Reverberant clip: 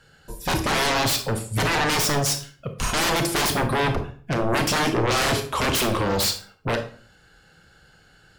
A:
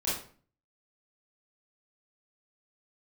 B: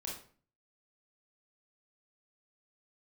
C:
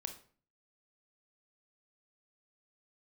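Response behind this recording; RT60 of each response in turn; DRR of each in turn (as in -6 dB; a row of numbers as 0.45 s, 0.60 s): C; 0.45 s, 0.45 s, 0.45 s; -9.5 dB, -3.0 dB, 6.5 dB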